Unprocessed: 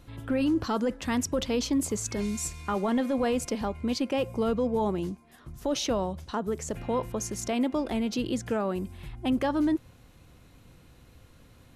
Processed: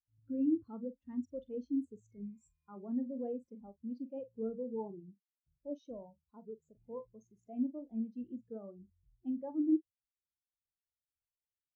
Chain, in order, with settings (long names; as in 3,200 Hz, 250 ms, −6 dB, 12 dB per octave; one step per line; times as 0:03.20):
double-tracking delay 45 ms −8 dB
every bin expanded away from the loudest bin 2.5 to 1
level −5 dB